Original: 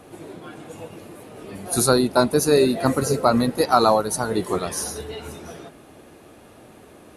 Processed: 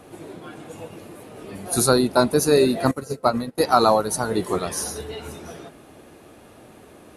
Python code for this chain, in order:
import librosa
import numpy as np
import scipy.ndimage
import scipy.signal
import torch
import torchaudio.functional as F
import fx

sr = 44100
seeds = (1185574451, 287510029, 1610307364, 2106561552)

y = fx.upward_expand(x, sr, threshold_db=-29.0, expansion=2.5, at=(2.91, 3.58))